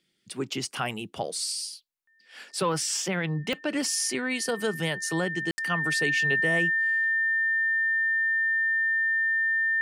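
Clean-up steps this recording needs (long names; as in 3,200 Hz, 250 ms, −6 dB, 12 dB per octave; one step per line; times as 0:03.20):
click removal
notch filter 1,800 Hz, Q 30
ambience match 0:05.51–0:05.58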